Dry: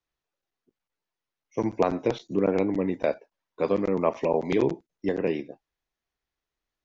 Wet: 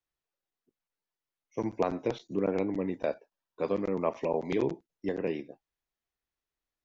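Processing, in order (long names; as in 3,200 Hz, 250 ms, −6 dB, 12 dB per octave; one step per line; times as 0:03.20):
0:02.96–0:03.63: notch filter 2,100 Hz, Q 8.3
level −5.5 dB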